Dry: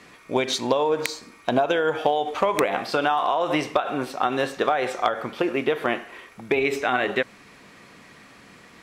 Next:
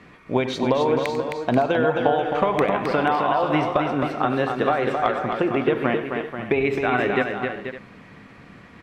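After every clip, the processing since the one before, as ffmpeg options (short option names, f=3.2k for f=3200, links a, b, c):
-filter_complex "[0:a]bass=f=250:g=8,treble=f=4k:g=-14,asplit=2[a][b];[b]aecho=0:1:95|264|485|559:0.178|0.531|0.335|0.158[c];[a][c]amix=inputs=2:normalize=0"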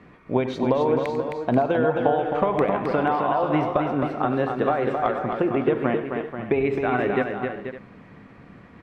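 -af "highshelf=f=2k:g=-11"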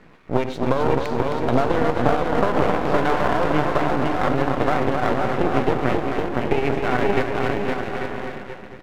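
-af "bandreject=f=1.2k:w=20,aecho=1:1:510|841.5|1057|1197|1288:0.631|0.398|0.251|0.158|0.1,aeval=exprs='max(val(0),0)':c=same,volume=4dB"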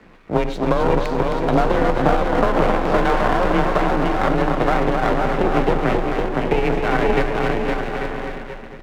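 -af "afreqshift=23,volume=2dB"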